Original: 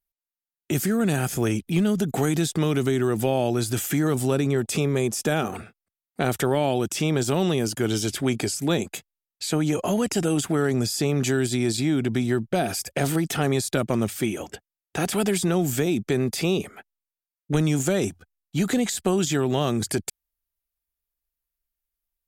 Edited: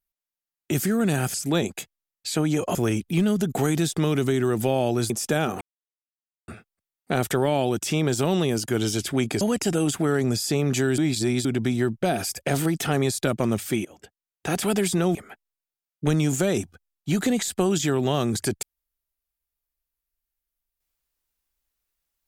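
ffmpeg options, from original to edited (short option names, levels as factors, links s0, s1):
-filter_complex "[0:a]asplit=10[s0][s1][s2][s3][s4][s5][s6][s7][s8][s9];[s0]atrim=end=1.342[s10];[s1]atrim=start=8.498:end=9.912[s11];[s2]atrim=start=1.338:end=3.692[s12];[s3]atrim=start=5.058:end=5.57,asetpts=PTS-STARTPTS,afade=t=out:st=0.508:d=0.004:c=hsin,apad=pad_dur=0.87[s13];[s4]atrim=start=5.57:end=8.502,asetpts=PTS-STARTPTS,afade=t=in:d=0.004:c=hsin[s14];[s5]atrim=start=9.908:end=11.482[s15];[s6]atrim=start=11.478:end=11.952,asetpts=PTS-STARTPTS,areverse[s16];[s7]atrim=start=11.948:end=14.35,asetpts=PTS-STARTPTS,afade=t=out:st=2.398:d=0.004:c=hsin:silence=0.0891251[s17];[s8]atrim=start=14.35:end=15.652,asetpts=PTS-STARTPTS,afade=t=in:d=0.7:silence=0.0891251[s18];[s9]atrim=start=16.618[s19];[s10][s11]acrossfade=d=0.004:c1=hsin:c2=hsin[s20];[s20][s12]acrossfade=d=0.004:c1=hsin:c2=hsin[s21];[s13][s14]concat=n=2:v=0:a=1[s22];[s21][s22]acrossfade=d=0.004:c1=hsin:c2=hsin[s23];[s23][s15]acrossfade=d=0.004:c1=hsin:c2=hsin[s24];[s24][s16]acrossfade=d=0.004:c1=hsin:c2=hsin[s25];[s17][s18]concat=n=2:v=0:a=1[s26];[s25][s26]acrossfade=d=0.004:c1=hsin:c2=hsin[s27];[s27][s19]acrossfade=d=0.004:c1=hsin:c2=hsin"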